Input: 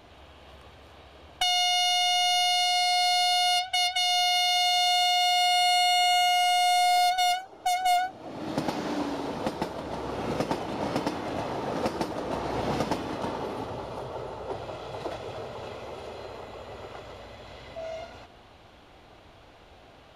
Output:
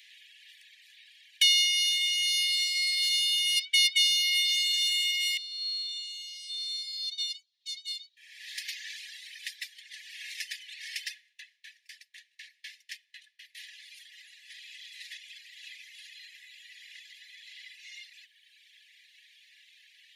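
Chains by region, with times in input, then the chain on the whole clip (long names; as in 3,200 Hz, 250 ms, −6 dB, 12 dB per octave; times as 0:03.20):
0:05.37–0:08.17: four-pole ladder band-pass 4,400 Hz, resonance 65% + floating-point word with a short mantissa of 8 bits
0:11.14–0:13.55: high-shelf EQ 3,300 Hz −4.5 dB + tremolo with a ramp in dB decaying 4 Hz, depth 27 dB
whole clip: Chebyshev high-pass filter 1,700 Hz, order 10; reverb reduction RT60 1.6 s; level +6 dB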